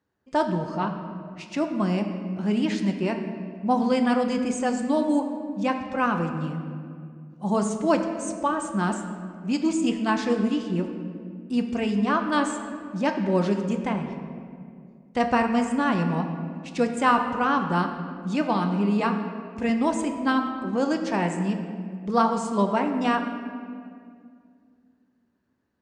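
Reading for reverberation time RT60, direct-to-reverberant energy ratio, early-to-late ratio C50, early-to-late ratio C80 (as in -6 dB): 2.3 s, 4.5 dB, 6.5 dB, 8.0 dB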